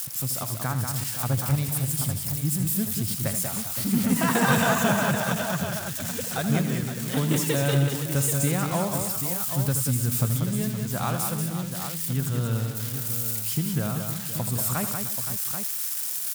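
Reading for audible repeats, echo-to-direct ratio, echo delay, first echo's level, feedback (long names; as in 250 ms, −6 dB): 5, −2.0 dB, 80 ms, −10.5 dB, repeats not evenly spaced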